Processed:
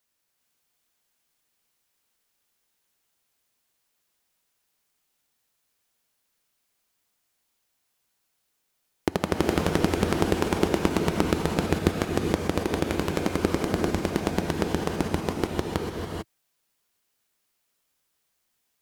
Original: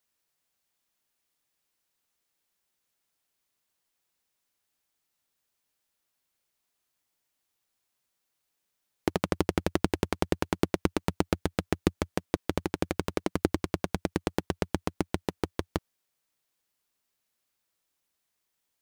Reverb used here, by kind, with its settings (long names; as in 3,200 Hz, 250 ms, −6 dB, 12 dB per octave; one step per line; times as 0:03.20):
reverb whose tail is shaped and stops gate 470 ms rising, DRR 0.5 dB
level +2.5 dB